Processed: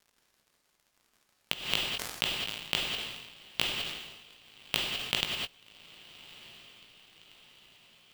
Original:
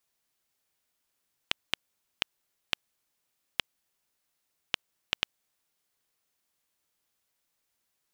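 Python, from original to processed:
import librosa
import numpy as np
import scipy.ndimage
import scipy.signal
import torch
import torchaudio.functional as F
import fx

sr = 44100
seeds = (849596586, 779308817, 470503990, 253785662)

y = fx.graphic_eq_15(x, sr, hz=(160, 1600, 6300), db=(5, -9, -5))
y = fx.quant_companded(y, sr, bits=4)
y = fx.dmg_crackle(y, sr, seeds[0], per_s=120.0, level_db=-53.0)
y = fx.doubler(y, sr, ms=18.0, db=-10.0)
y = fx.echo_diffused(y, sr, ms=1200, feedback_pct=52, wet_db=-16)
y = fx.rev_gated(y, sr, seeds[1], gate_ms=230, shape='rising', drr_db=0.0)
y = np.repeat(y[::2], 2)[:len(y)]
y = fx.sustainer(y, sr, db_per_s=49.0, at=(1.62, 5.21))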